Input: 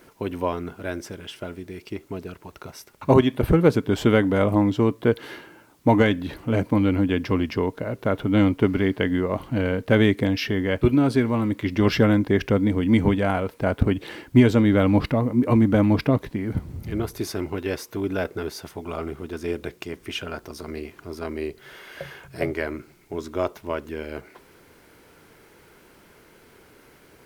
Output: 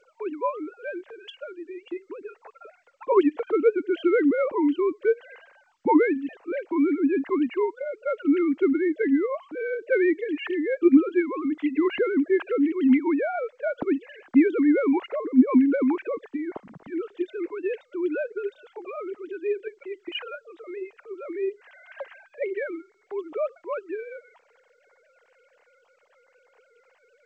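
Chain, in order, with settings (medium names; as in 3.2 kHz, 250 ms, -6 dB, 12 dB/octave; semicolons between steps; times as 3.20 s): formants replaced by sine waves; trim -2.5 dB; G.722 64 kbps 16 kHz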